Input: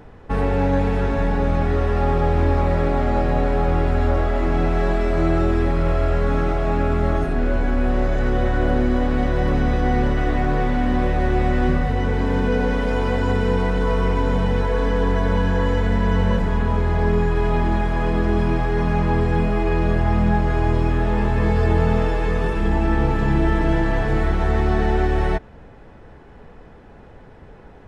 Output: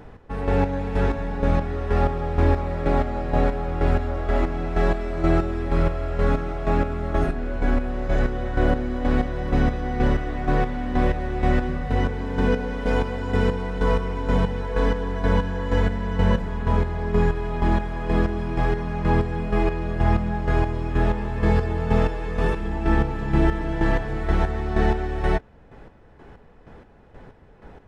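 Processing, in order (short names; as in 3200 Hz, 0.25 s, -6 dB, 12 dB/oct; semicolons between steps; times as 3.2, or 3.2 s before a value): chopper 2.1 Hz, depth 60%, duty 35%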